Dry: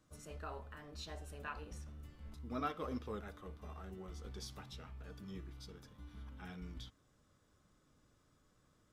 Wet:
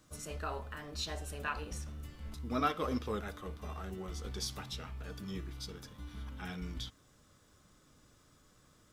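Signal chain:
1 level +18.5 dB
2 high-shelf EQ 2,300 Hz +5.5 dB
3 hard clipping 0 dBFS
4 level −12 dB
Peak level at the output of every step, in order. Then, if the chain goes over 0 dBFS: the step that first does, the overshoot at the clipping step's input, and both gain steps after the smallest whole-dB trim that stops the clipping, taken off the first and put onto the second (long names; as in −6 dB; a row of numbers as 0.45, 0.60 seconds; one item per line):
−7.5, −6.0, −6.0, −18.0 dBFS
no step passes full scale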